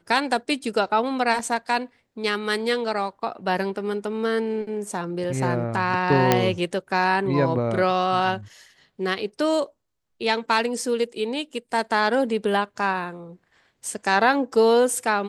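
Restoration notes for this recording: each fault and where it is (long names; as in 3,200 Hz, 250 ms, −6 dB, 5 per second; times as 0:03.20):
0:06.32: click −2 dBFS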